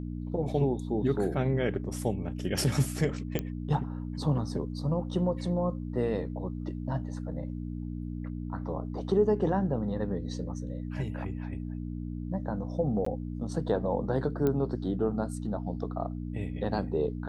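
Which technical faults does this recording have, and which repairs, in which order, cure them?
hum 60 Hz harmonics 5 -36 dBFS
3.39 s: pop -16 dBFS
13.05–13.06 s: dropout 14 ms
14.47 s: pop -17 dBFS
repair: de-click; de-hum 60 Hz, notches 5; interpolate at 13.05 s, 14 ms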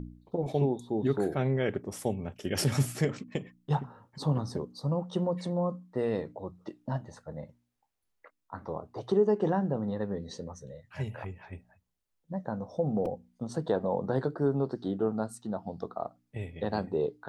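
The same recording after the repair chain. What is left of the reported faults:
3.39 s: pop

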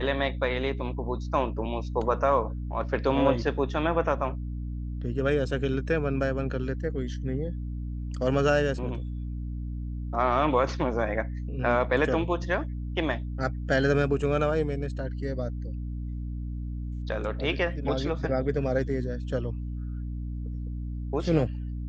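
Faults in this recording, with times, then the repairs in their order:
hum 60 Hz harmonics 5 -33 dBFS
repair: de-hum 60 Hz, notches 5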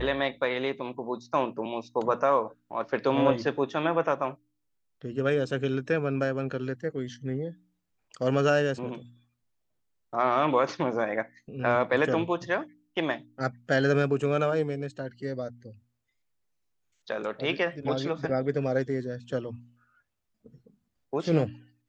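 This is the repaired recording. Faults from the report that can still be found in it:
nothing left

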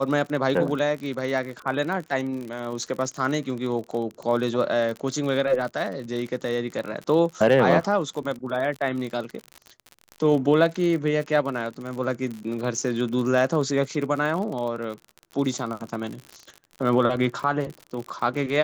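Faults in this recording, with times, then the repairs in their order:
crackle 46 per s -30 dBFS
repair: de-click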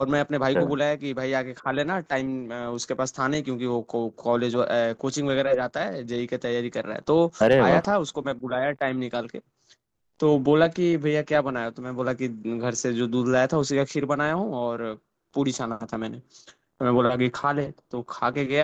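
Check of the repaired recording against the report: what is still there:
nothing left

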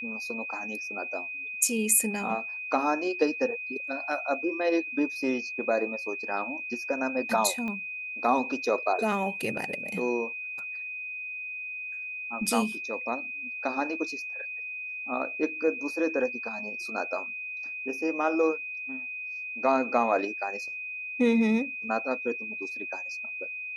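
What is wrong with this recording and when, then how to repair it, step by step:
whine 2.5 kHz -34 dBFS
7.68 s: pop -24 dBFS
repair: de-click; band-stop 2.5 kHz, Q 30

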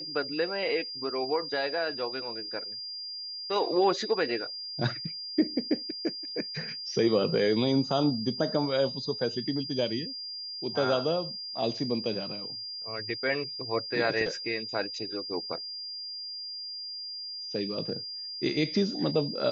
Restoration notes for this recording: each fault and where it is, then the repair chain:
whine 4.8 kHz -36 dBFS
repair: band-stop 4.8 kHz, Q 30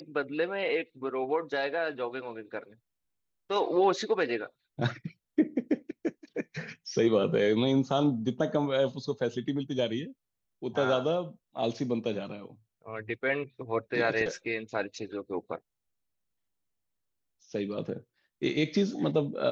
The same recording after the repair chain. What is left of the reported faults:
nothing left

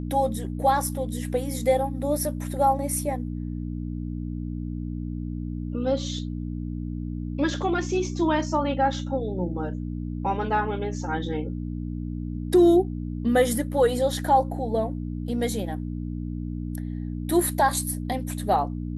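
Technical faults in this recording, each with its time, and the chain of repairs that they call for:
hum 60 Hz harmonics 5 -31 dBFS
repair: de-hum 60 Hz, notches 5

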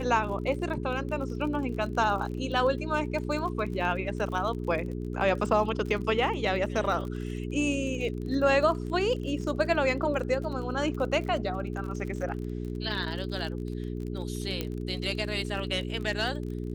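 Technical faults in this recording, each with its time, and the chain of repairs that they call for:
crackle 40 per s -36 dBFS
hum 60 Hz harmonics 7 -34 dBFS
14.61 s: pop -16 dBFS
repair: de-click; de-hum 60 Hz, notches 7

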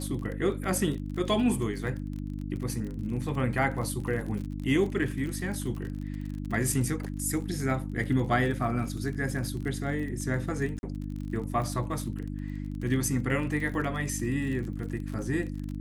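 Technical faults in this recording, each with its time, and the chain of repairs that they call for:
crackle 36 per s -35 dBFS
hum 50 Hz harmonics 6 -35 dBFS
10.79–10.83 s: dropout 41 ms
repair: de-click; de-hum 50 Hz, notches 6; interpolate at 10.79 s, 41 ms

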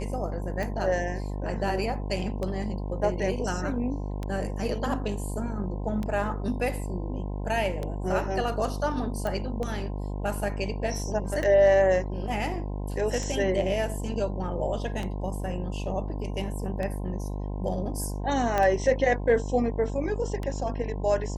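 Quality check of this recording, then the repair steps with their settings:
buzz 50 Hz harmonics 21 -32 dBFS
tick 33 1/3 rpm -19 dBFS
9.27 s: pop
18.58 s: pop -13 dBFS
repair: de-click; de-hum 50 Hz, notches 21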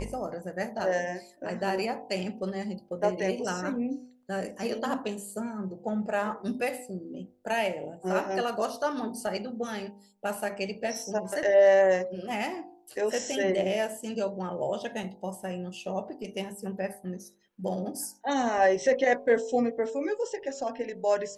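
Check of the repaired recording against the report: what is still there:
nothing left

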